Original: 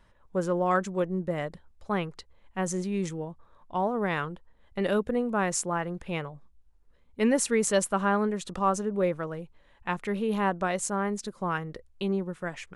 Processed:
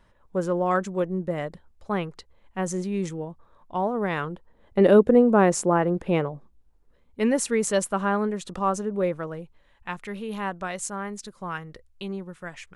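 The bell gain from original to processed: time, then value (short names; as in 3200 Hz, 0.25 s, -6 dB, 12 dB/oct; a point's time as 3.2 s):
bell 360 Hz 3 oct
4.12 s +2.5 dB
4.8 s +12.5 dB
6.29 s +12.5 dB
7.23 s +1.5 dB
9.39 s +1.5 dB
9.88 s -5.5 dB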